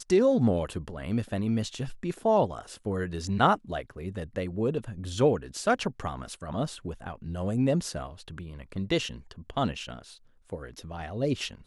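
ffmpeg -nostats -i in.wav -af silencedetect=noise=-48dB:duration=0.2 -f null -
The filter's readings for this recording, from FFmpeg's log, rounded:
silence_start: 10.17
silence_end: 10.50 | silence_duration: 0.33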